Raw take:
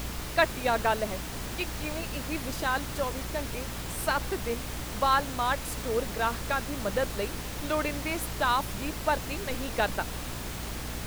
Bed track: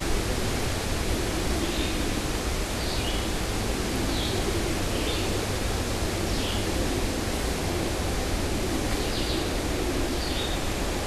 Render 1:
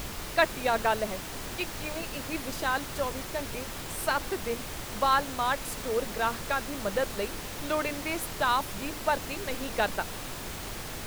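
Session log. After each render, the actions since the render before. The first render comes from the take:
mains-hum notches 60/120/180/240/300 Hz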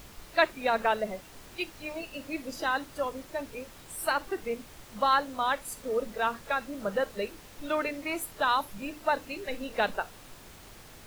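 noise reduction from a noise print 12 dB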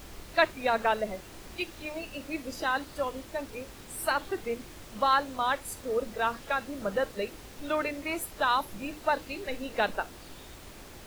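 mix in bed track −23 dB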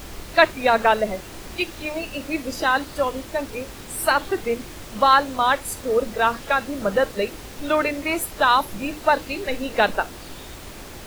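level +9 dB
brickwall limiter −1 dBFS, peak gain reduction 0.5 dB

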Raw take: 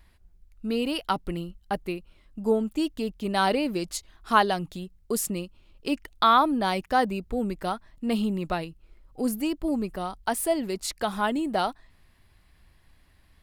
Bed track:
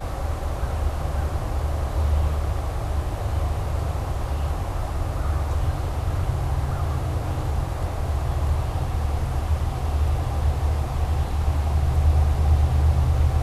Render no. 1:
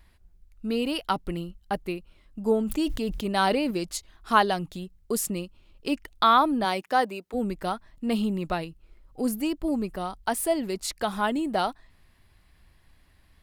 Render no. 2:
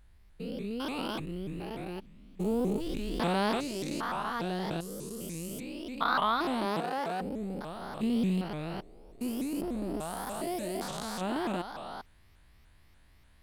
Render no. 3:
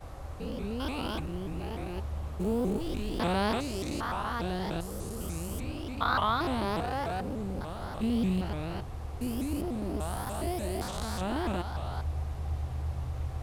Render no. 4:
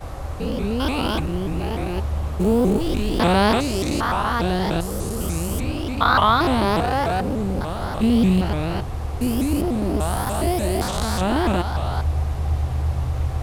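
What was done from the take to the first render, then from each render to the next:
0:02.56–0:03.71: level that may fall only so fast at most 52 dB per second; 0:06.64–0:07.33: high-pass filter 200 Hz → 440 Hz
spectrum averaged block by block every 400 ms; pitch modulation by a square or saw wave saw up 3.4 Hz, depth 250 cents
mix in bed track −15 dB
level +11.5 dB; brickwall limiter −3 dBFS, peak gain reduction 1 dB

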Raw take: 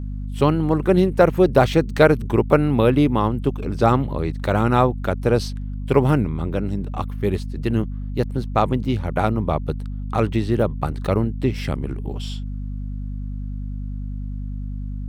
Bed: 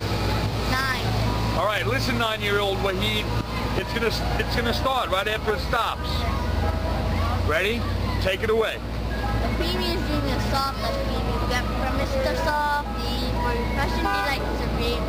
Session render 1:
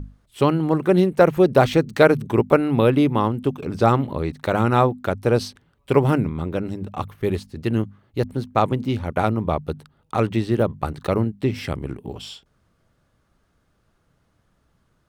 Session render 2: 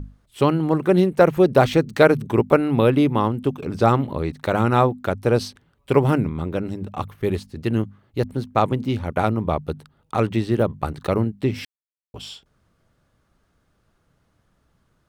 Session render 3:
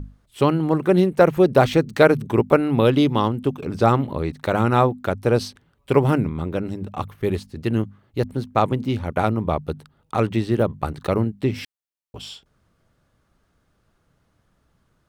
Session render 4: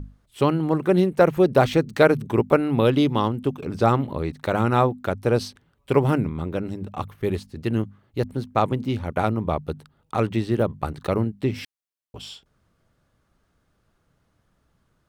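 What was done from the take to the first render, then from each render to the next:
mains-hum notches 50/100/150/200/250 Hz
0:11.65–0:12.14: silence
0:02.85–0:03.29: gain on a spectral selection 2,800–7,500 Hz +7 dB
level −2 dB

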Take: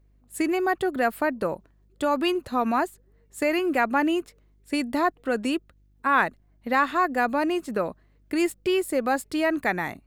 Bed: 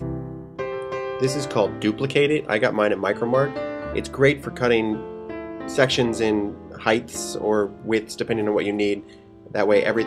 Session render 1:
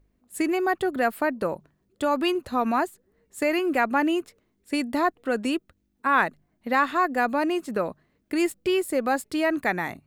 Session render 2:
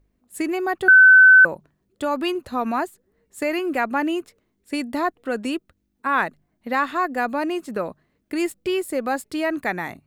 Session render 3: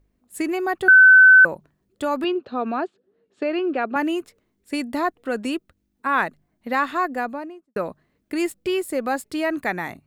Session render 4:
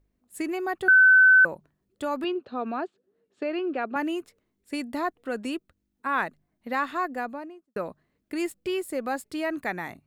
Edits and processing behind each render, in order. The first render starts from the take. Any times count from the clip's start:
hum removal 50 Hz, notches 3
0:00.88–0:01.45: beep over 1,520 Hz −6.5 dBFS
0:02.24–0:03.96: loudspeaker in its box 200–3,900 Hz, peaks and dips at 410 Hz +5 dB, 980 Hz −6 dB, 2,000 Hz −10 dB; 0:06.99–0:07.76: fade out and dull
level −5.5 dB

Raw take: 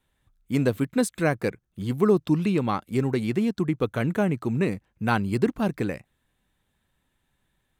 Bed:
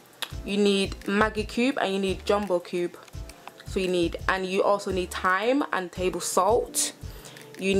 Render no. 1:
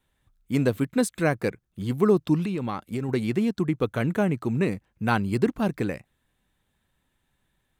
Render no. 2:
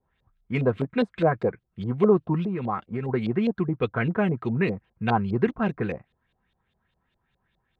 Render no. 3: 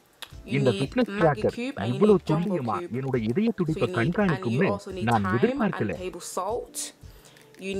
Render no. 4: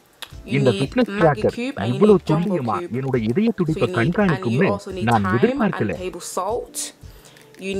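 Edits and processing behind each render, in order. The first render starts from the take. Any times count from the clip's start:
0:02.45–0:03.09: downward compressor 5 to 1, threshold −25 dBFS
notch comb filter 290 Hz; auto-filter low-pass saw up 4.9 Hz 540–4,000 Hz
mix in bed −7.5 dB
level +5.5 dB

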